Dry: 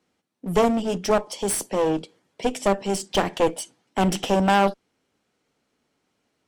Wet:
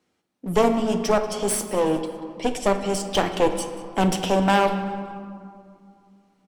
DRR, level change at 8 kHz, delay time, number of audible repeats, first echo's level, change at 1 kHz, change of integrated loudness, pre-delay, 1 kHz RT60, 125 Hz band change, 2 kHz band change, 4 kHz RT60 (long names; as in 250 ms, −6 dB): 6.5 dB, +0.5 dB, 186 ms, 3, −19.5 dB, +0.5 dB, 0.0 dB, 7 ms, 2.3 s, +0.5 dB, +0.5 dB, 1.2 s